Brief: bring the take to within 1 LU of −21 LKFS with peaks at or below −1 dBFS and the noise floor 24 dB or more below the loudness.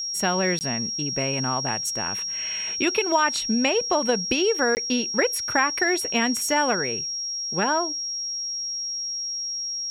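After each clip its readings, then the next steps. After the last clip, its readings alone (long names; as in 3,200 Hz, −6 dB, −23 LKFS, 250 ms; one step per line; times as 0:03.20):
number of dropouts 2; longest dropout 19 ms; interfering tone 5,600 Hz; level of the tone −27 dBFS; integrated loudness −23.5 LKFS; sample peak −7.5 dBFS; target loudness −21.0 LKFS
→ repair the gap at 0:00.59/0:04.75, 19 ms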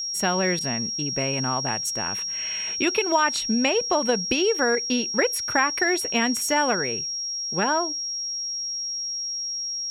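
number of dropouts 0; interfering tone 5,600 Hz; level of the tone −27 dBFS
→ notch filter 5,600 Hz, Q 30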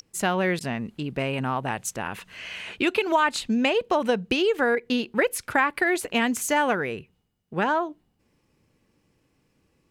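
interfering tone none found; integrated loudness −25.0 LKFS; sample peak −8.5 dBFS; target loudness −21.0 LKFS
→ level +4 dB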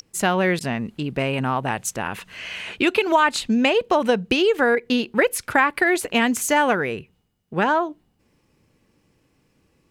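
integrated loudness −21.0 LKFS; sample peak −4.5 dBFS; background noise floor −66 dBFS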